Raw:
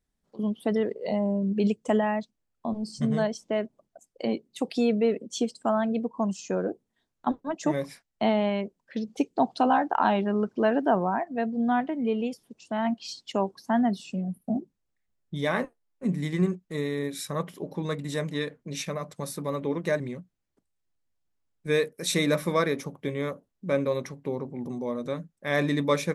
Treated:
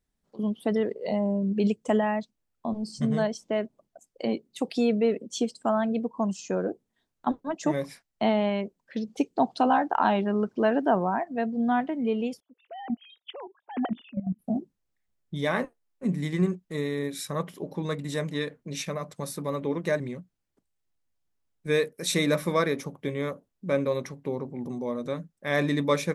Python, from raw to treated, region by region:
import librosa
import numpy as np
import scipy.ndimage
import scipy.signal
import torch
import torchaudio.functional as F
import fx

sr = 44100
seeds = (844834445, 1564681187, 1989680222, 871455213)

y = fx.chain(x, sr, fx.sine_speech(),
    fx.level_steps(step_db=13), at=(12.4, 14.39))